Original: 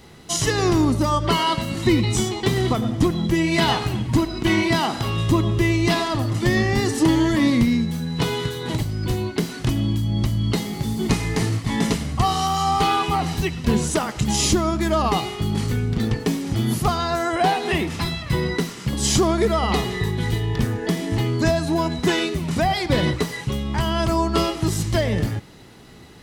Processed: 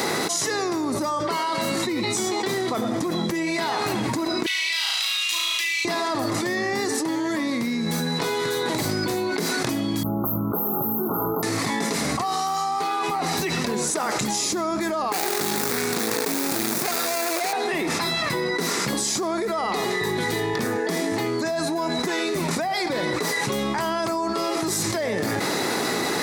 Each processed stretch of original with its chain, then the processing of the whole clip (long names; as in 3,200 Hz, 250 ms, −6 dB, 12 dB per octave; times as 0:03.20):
0:04.46–0:05.85: high-pass with resonance 2,900 Hz, resonance Q 3 + flutter between parallel walls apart 6.1 metres, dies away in 0.83 s
0:10.03–0:11.43: linear-phase brick-wall band-stop 1,500–12,000 Hz + first-order pre-emphasis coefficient 0.8
0:15.12–0:17.53: running median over 41 samples + spectral tilt +4.5 dB per octave
whole clip: high-pass filter 340 Hz 12 dB per octave; parametric band 3,000 Hz −12 dB 0.27 octaves; envelope flattener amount 100%; level −7.5 dB